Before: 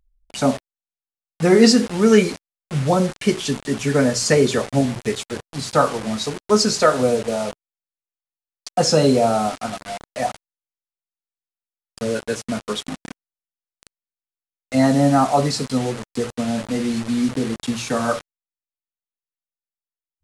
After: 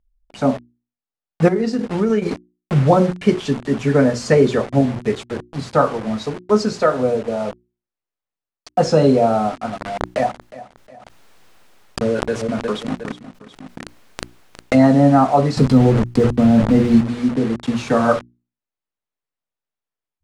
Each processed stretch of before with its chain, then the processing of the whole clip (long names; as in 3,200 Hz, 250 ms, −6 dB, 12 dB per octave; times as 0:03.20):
0:01.48–0:02.76: downward compressor, threshold −23 dBFS + transient designer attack +4 dB, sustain −10 dB
0:09.80–0:14.87: repeating echo 361 ms, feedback 28%, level −18 dB + background raised ahead of every attack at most 27 dB per second
0:15.57–0:17.01: one scale factor per block 5 bits + low-shelf EQ 240 Hz +11.5 dB + envelope flattener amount 50%
whole clip: low-pass filter 1,400 Hz 6 dB per octave; mains-hum notches 60/120/180/240/300/360 Hz; automatic gain control; level −1 dB